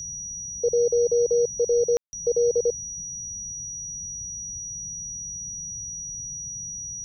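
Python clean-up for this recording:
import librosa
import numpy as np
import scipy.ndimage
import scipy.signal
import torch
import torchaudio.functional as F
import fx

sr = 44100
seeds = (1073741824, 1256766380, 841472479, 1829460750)

y = fx.notch(x, sr, hz=5800.0, q=30.0)
y = fx.fix_ambience(y, sr, seeds[0], print_start_s=2.81, print_end_s=3.31, start_s=1.97, end_s=2.13)
y = fx.noise_reduce(y, sr, print_start_s=2.81, print_end_s=3.31, reduce_db=30.0)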